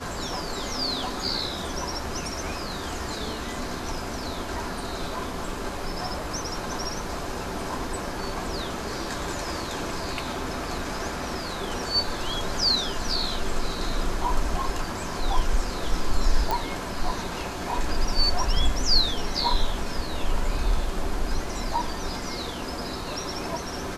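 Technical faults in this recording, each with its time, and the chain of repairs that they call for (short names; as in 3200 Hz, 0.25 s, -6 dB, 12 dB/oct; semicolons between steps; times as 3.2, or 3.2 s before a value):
16.51 pop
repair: de-click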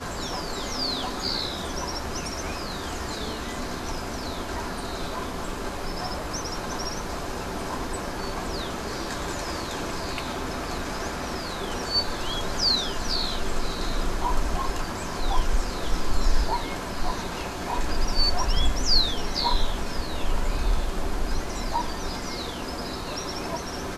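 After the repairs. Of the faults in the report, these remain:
none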